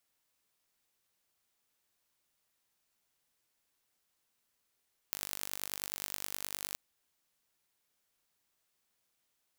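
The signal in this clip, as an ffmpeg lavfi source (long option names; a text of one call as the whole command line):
ffmpeg -f lavfi -i "aevalsrc='0.422*eq(mod(n,893),0)*(0.5+0.5*eq(mod(n,4465),0))':duration=1.63:sample_rate=44100" out.wav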